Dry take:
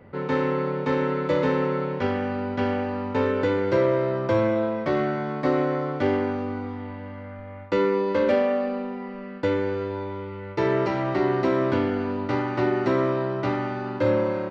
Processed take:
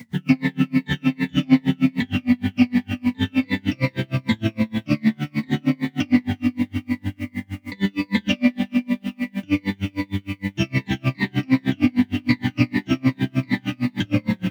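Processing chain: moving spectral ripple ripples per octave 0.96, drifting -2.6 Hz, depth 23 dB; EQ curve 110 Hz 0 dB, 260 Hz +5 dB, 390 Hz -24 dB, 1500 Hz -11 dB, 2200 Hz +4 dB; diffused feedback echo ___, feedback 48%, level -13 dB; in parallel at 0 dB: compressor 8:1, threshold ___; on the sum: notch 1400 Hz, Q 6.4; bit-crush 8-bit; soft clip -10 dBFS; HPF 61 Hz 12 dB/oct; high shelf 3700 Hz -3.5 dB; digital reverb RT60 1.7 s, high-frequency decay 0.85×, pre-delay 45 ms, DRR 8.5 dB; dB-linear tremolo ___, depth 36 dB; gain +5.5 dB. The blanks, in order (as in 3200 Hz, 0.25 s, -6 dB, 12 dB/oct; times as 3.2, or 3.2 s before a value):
0.452 s, -28 dBFS, 6.5 Hz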